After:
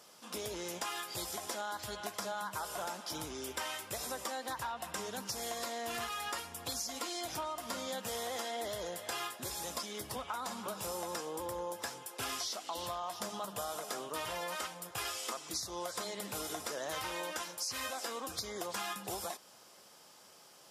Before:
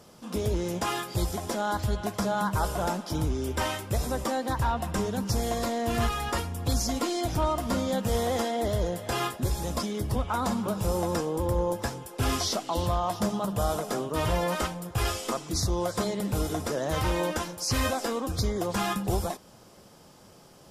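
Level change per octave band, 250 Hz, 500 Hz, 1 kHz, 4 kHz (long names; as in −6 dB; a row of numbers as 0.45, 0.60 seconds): −17.0, −12.0, −9.0, −5.0 decibels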